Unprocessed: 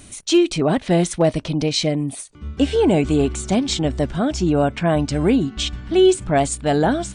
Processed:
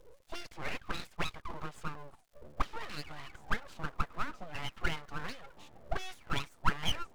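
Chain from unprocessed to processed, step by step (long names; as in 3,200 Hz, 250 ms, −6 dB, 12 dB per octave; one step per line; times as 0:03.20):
envelope filter 220–1,900 Hz, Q 12, up, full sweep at −11.5 dBFS
surface crackle 260 per second −63 dBFS
full-wave rectification
level +5.5 dB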